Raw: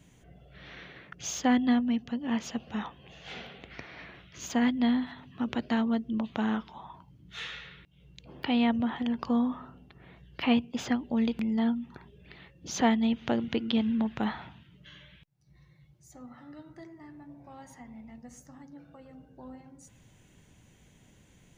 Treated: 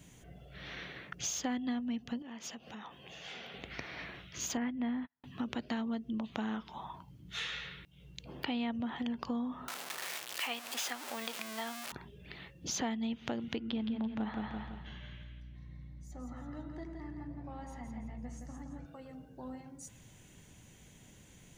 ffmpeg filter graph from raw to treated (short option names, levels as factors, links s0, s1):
-filter_complex "[0:a]asettb=1/sr,asplit=3[s0][s1][s2];[s0]atrim=end=2.224[s3];[s1]atrim=start=2.22:end=3.54,asetpts=PTS-STARTPTS,afade=t=in:d=0.004:c=qsin,afade=t=out:st=1.316:d=0.004:c=qsin,acompressor=threshold=0.00562:ratio=4:attack=3.2:release=140:knee=1:detection=peak,highpass=f=220:p=1,bandreject=f=4100:w=23[s4];[s2]atrim=start=3.536[s5];[s3][s4]acrossfade=d=0.004:c1=hsin:c2=qsin[s6];[s6][s5]acrossfade=d=0.004:c1=qsin:c2=hsin,asettb=1/sr,asplit=3[s7][s8][s9];[s7]atrim=end=4.574[s10];[s8]atrim=start=4.57:end=5.24,asetpts=PTS-STARTPTS,afade=t=in:d=0.004:c=qsin,afade=t=out:st=0.666:d=0.004:c=qsin,agate=range=0.00501:threshold=0.0158:ratio=16:release=100:detection=peak,lowpass=f=2600:w=0.5412,lowpass=f=2600:w=1.3066[s11];[s9]atrim=start=5.236[s12];[s10][s11]acrossfade=d=0.004:c1=hsin:c2=qsin[s13];[s13][s12]acrossfade=d=0.004:c1=qsin:c2=hsin,asettb=1/sr,asplit=3[s14][s15][s16];[s14]atrim=end=9.684[s17];[s15]atrim=start=9.68:end=11.92,asetpts=PTS-STARTPTS,afade=t=in:d=0.004:c=qsin,afade=t=out:st=2.236:d=0.004:c=qsin,aeval=exprs='val(0)+0.5*0.0266*sgn(val(0))':c=same,highpass=750[s18];[s16]atrim=start=11.916[s19];[s17][s18]acrossfade=d=0.004:c1=hsin:c2=qsin[s20];[s20][s19]acrossfade=d=0.004:c1=qsin:c2=hsin,asettb=1/sr,asplit=3[s21][s22][s23];[s21]atrim=end=13.584[s24];[s22]atrim=start=13.58:end=18.86,asetpts=PTS-STARTPTS,afade=t=in:d=0.004:c=qsin,afade=t=out:st=5.276:d=0.004:c=qsin,lowpass=f=2000:p=1,aeval=exprs='val(0)+0.00251*(sin(2*PI*60*n/s)+sin(2*PI*2*60*n/s)/2+sin(2*PI*3*60*n/s)/3+sin(2*PI*4*60*n/s)/4+sin(2*PI*5*60*n/s)/5)':c=same,aecho=1:1:168|336|504|672|840:0.562|0.214|0.0812|0.0309|0.0117,atrim=end_sample=232848[s25];[s23]atrim=start=18.856[s26];[s24][s25]acrossfade=d=0.004:c1=hsin:c2=qsin[s27];[s27][s26]acrossfade=d=0.004:c1=qsin:c2=hsin,highshelf=f=4400:g=6.5,acompressor=threshold=0.0158:ratio=4,volume=1.12"